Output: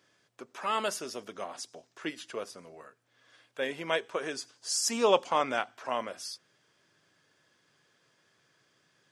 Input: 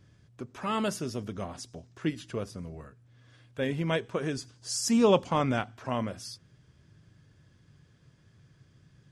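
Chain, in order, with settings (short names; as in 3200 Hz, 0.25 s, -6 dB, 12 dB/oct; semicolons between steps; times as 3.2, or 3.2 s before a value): HPF 510 Hz 12 dB/oct; gain +2 dB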